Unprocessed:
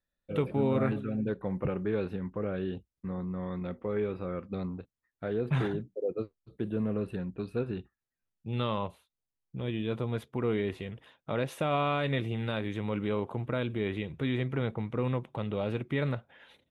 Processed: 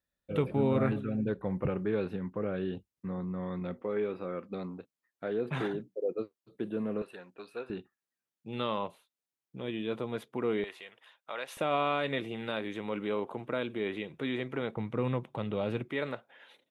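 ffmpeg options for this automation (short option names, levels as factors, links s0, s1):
-af "asetnsamples=n=441:p=0,asendcmd='1.79 highpass f 110;3.81 highpass f 220;7.02 highpass f 630;7.7 highpass f 220;10.64 highpass f 840;11.57 highpass f 250;14.77 highpass f 110;15.89 highpass f 320',highpass=42"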